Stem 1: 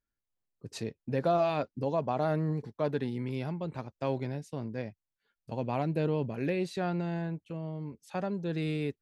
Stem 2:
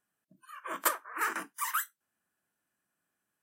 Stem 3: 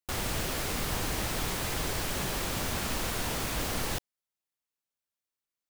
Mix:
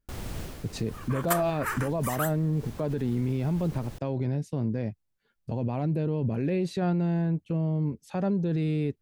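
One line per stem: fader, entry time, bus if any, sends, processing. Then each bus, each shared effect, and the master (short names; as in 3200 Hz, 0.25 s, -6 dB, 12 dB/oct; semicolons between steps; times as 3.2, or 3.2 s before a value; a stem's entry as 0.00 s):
+2.5 dB, 0.00 s, bus A, no send, dry
-0.5 dB, 0.45 s, no bus, no send, dry
-11.0 dB, 0.00 s, bus A, no send, auto duck -7 dB, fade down 0.20 s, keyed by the first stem
bus A: 0.0 dB, low shelf 450 Hz +11 dB; limiter -20 dBFS, peak gain reduction 10.5 dB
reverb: off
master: dry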